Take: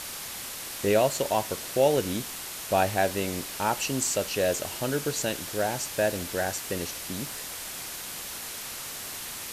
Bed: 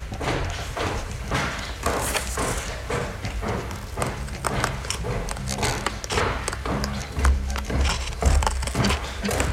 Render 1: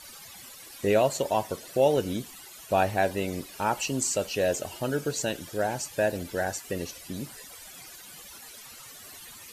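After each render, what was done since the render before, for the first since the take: noise reduction 15 dB, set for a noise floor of -38 dBFS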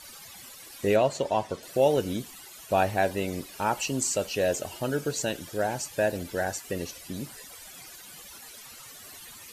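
0.96–1.63 s: distance through air 62 m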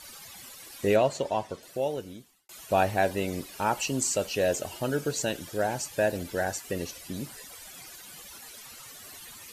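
0.97–2.49 s: fade out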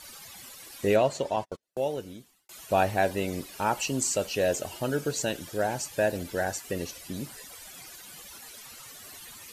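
1.36–1.89 s: gate -38 dBFS, range -37 dB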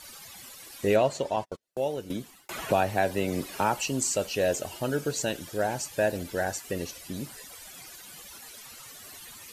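2.10–3.77 s: three bands compressed up and down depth 70%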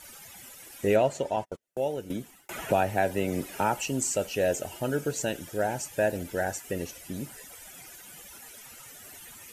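peaking EQ 4.3 kHz -8 dB 0.62 oct; band-stop 1.1 kHz, Q 7.1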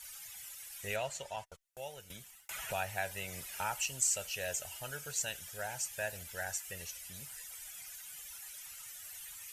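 amplifier tone stack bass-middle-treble 10-0-10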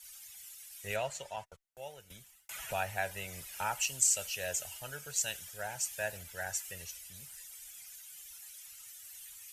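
three bands expanded up and down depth 40%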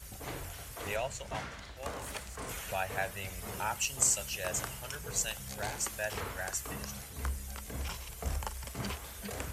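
add bed -16.5 dB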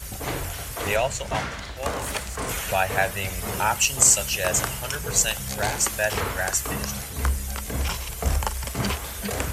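trim +12 dB; peak limiter -1 dBFS, peak gain reduction 2 dB

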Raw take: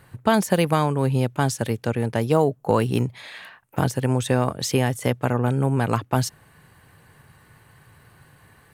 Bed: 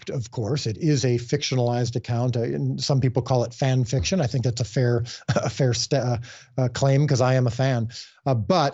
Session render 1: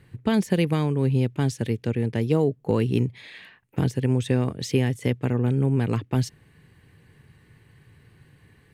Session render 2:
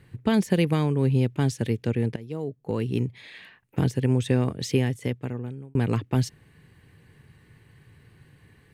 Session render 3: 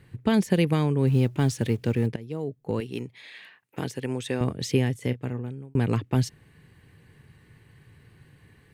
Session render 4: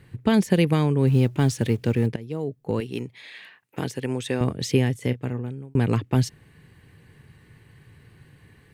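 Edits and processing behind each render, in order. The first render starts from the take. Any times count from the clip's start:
low-pass 2.7 kHz 6 dB/octave; high-order bell 920 Hz -10.5 dB
2.16–4.02 s: fade in equal-power, from -19 dB; 4.68–5.75 s: fade out
1.07–2.07 s: companding laws mixed up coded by mu; 2.80–4.41 s: high-pass 490 Hz 6 dB/octave; 4.98–5.41 s: doubling 32 ms -13.5 dB
trim +2.5 dB

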